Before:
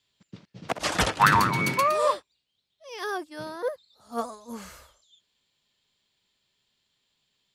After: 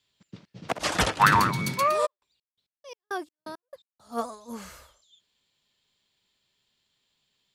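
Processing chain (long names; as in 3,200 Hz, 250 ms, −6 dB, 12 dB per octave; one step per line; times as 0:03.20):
0:01.52–0:01.81: gain on a spectral selection 240–3,200 Hz −7 dB
0:02.05–0:04.15: gate pattern "..x..xx..x" 169 BPM −60 dB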